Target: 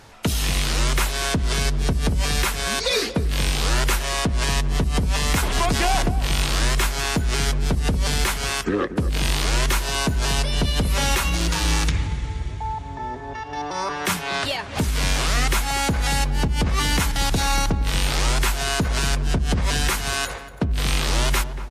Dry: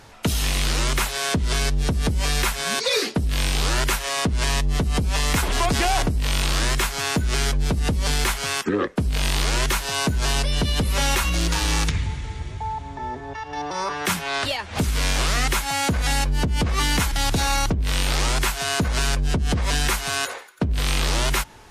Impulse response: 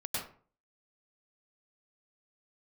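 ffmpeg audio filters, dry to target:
-filter_complex "[0:a]asplit=2[link_01][link_02];[link_02]adelay=234,lowpass=frequency=840:poles=1,volume=-9.5dB,asplit=2[link_03][link_04];[link_04]adelay=234,lowpass=frequency=840:poles=1,volume=0.47,asplit=2[link_05][link_06];[link_06]adelay=234,lowpass=frequency=840:poles=1,volume=0.47,asplit=2[link_07][link_08];[link_08]adelay=234,lowpass=frequency=840:poles=1,volume=0.47,asplit=2[link_09][link_10];[link_10]adelay=234,lowpass=frequency=840:poles=1,volume=0.47[link_11];[link_01][link_03][link_05][link_07][link_09][link_11]amix=inputs=6:normalize=0"

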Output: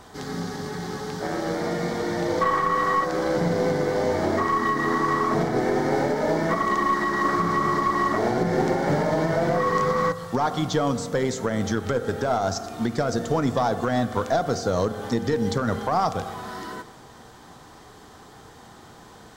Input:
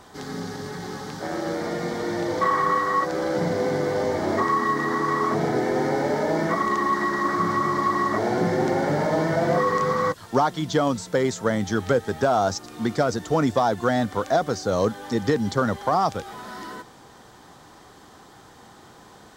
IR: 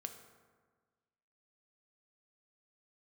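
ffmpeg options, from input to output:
-filter_complex "[0:a]asplit=2[link_01][link_02];[1:a]atrim=start_sample=2205,lowshelf=frequency=94:gain=9[link_03];[link_02][link_03]afir=irnorm=-1:irlink=0,volume=4.5dB[link_04];[link_01][link_04]amix=inputs=2:normalize=0,aeval=exprs='0.841*(cos(1*acos(clip(val(0)/0.841,-1,1)))-cos(1*PI/2))+0.0944*(cos(2*acos(clip(val(0)/0.841,-1,1)))-cos(2*PI/2))+0.0531*(cos(3*acos(clip(val(0)/0.841,-1,1)))-cos(3*PI/2))':channel_layout=same,alimiter=limit=-8.5dB:level=0:latency=1:release=172,volume=-3.5dB"

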